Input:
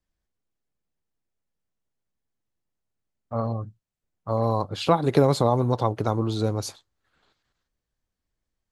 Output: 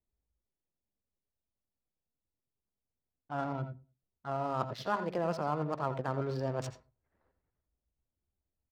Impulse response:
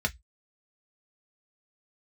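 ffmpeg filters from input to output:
-filter_complex "[0:a]adynamicsmooth=sensitivity=7.5:basefreq=680,asetrate=53981,aresample=44100,atempo=0.816958,areverse,acompressor=threshold=-27dB:ratio=6,areverse,lowpass=frequency=3600:poles=1,lowshelf=frequency=310:gain=-7.5,asplit=2[link_01][link_02];[link_02]adelay=102,lowpass=frequency=810:poles=1,volume=-22.5dB,asplit=2[link_03][link_04];[link_04]adelay=102,lowpass=frequency=810:poles=1,volume=0.36[link_05];[link_01][link_03][link_05]amix=inputs=3:normalize=0,asplit=2[link_06][link_07];[1:a]atrim=start_sample=2205,lowshelf=frequency=93:gain=12,adelay=83[link_08];[link_07][link_08]afir=irnorm=-1:irlink=0,volume=-18.5dB[link_09];[link_06][link_09]amix=inputs=2:normalize=0"

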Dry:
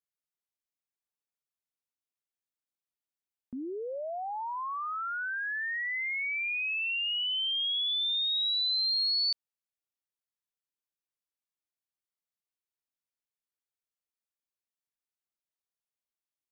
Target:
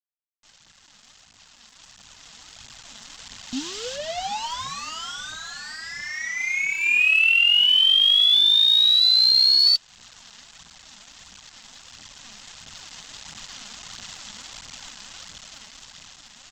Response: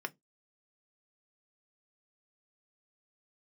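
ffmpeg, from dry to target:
-filter_complex "[0:a]aeval=exprs='val(0)+0.5*0.00447*sgn(val(0))':channel_layout=same,highshelf=frequency=2200:width_type=q:width=3:gain=11.5,acrossover=split=2500[link_01][link_02];[link_02]acontrast=21[link_03];[link_01][link_03]amix=inputs=2:normalize=0,acrossover=split=1500[link_04][link_05];[link_05]adelay=430[link_06];[link_04][link_06]amix=inputs=2:normalize=0,aresample=16000,aeval=exprs='val(0)*gte(abs(val(0)),0.0119)':channel_layout=same,aresample=44100,firequalizer=gain_entry='entry(230,0);entry(360,-13);entry(770,-3)':delay=0.05:min_phase=1,dynaudnorm=framelen=840:gausssize=7:maxgain=16dB,alimiter=limit=-11.5dB:level=0:latency=1:release=315,aphaser=in_gain=1:out_gain=1:delay=5:decay=0.47:speed=1.5:type=triangular,bandreject=frequency=2300:width=21,volume=-3dB"

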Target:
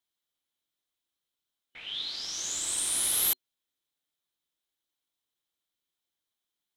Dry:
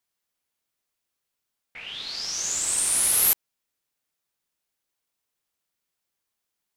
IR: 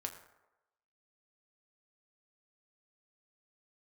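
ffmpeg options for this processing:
-af "superequalizer=6b=1.58:13b=2.51,volume=-6.5dB"

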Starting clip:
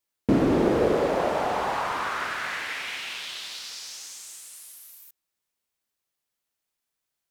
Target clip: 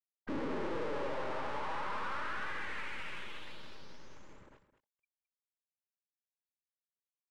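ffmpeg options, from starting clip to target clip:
ffmpeg -i in.wav -filter_complex "[0:a]afftfilt=real='re*gte(hypot(re,im),0.0158)':imag='im*gte(hypot(re,im),0.0158)':win_size=1024:overlap=0.75,acontrast=46,alimiter=level_in=5dB:limit=-24dB:level=0:latency=1:release=148,volume=-5dB,flanger=delay=2.5:depth=5.2:regen=-11:speed=0.39:shape=sinusoidal,asplit=2[link_01][link_02];[link_02]highpass=frequency=720:poles=1,volume=36dB,asoftclip=type=tanh:threshold=-30dB[link_03];[link_01][link_03]amix=inputs=2:normalize=0,lowpass=frequency=4600:poles=1,volume=-6dB,aresample=16000,aeval=exprs='clip(val(0),-1,0.00376)':channel_layout=same,aresample=44100,adynamicsmooth=sensitivity=5:basefreq=860,asuperstop=centerf=710:order=4:qfactor=5.6,aecho=1:1:215:0.224,volume=3dB" out.wav

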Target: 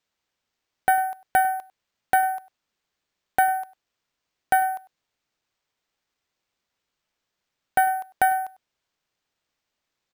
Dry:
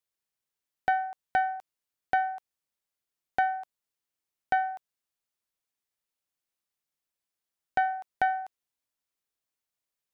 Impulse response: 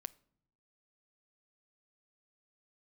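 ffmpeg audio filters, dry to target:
-filter_complex "[0:a]acrusher=samples=4:mix=1:aa=0.000001,asplit=2[link_01][link_02];[link_02]adelay=99.13,volume=-19dB,highshelf=frequency=4000:gain=-2.23[link_03];[link_01][link_03]amix=inputs=2:normalize=0,volume=6dB"

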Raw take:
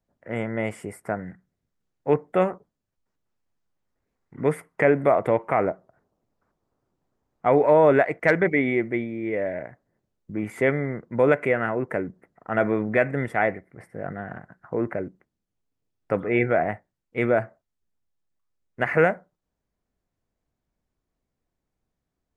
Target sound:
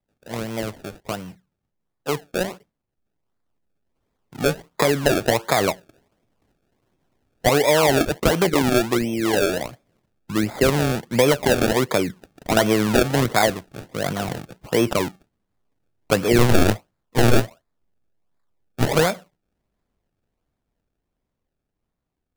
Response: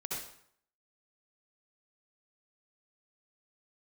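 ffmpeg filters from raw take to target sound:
-filter_complex "[0:a]asettb=1/sr,asplit=3[link_01][link_02][link_03];[link_01]atrim=end=16.384[link_04];[link_02]atrim=start=16.38:end=18.87,asetpts=PTS-STARTPTS,afade=type=in:duration=0.004:curve=qsin,afade=type=out:start_time=2.486:duration=0.004:curve=qsin,aeval=exprs='0.422*(cos(1*acos(clip(val(0)/0.422,-1,1)))-cos(1*PI/2))+0.0944*(cos(8*acos(clip(val(0)/0.422,-1,1)))-cos(8*PI/2))':channel_layout=same[link_05];[link_03]atrim=start=18.866[link_06];[link_04][link_05]acrossfade=duration=0.004:curve1=hsin:curve2=qsin[link_07];[link_07][link_06]acrossfade=duration=0.004:curve1=qsin:curve2=hsin,acrossover=split=130[link_08][link_09];[link_09]acompressor=threshold=-21dB:ratio=5[link_10];[link_08][link_10]amix=inputs=2:normalize=0,acrusher=samples=30:mix=1:aa=0.000001:lfo=1:lforange=30:lforate=1.4,dynaudnorm=framelen=850:gausssize=9:maxgain=9dB"

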